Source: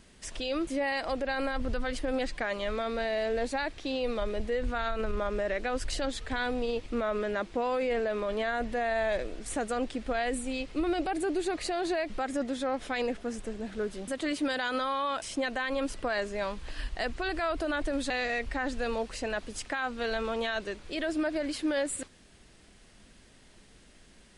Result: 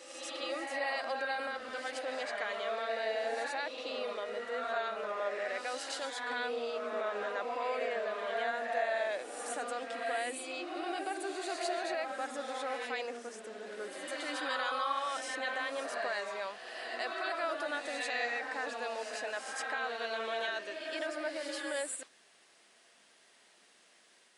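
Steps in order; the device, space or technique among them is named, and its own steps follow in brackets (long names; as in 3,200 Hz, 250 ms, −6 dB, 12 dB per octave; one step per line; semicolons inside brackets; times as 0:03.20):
ghost voice (reversed playback; convolution reverb RT60 1.6 s, pre-delay 72 ms, DRR 1 dB; reversed playback; high-pass filter 560 Hz 12 dB per octave)
level −4.5 dB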